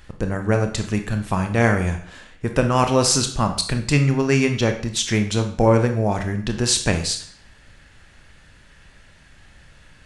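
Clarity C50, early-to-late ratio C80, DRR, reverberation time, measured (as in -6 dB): 9.0 dB, 13.0 dB, 5.5 dB, 0.55 s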